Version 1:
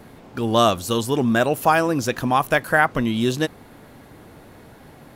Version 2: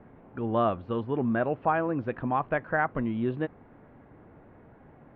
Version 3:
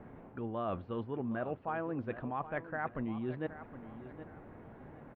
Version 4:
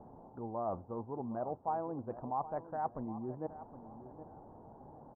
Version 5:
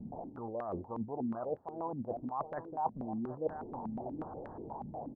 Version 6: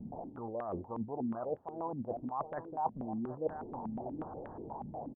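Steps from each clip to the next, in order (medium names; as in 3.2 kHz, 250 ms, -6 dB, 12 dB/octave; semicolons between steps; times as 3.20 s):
Bessel low-pass 1.5 kHz, order 6; trim -7.5 dB
reverse; compression 5:1, threshold -36 dBFS, peak gain reduction 15 dB; reverse; feedback delay 768 ms, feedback 31%, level -13.5 dB; trim +1 dB
local Wiener filter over 15 samples; four-pole ladder low-pass 980 Hz, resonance 60%; trim +6 dB
reverse; compression 6:1, threshold -45 dBFS, peak gain reduction 14 dB; reverse; step-sequenced low-pass 8.3 Hz 210–1700 Hz; trim +5.5 dB
resampled via 8 kHz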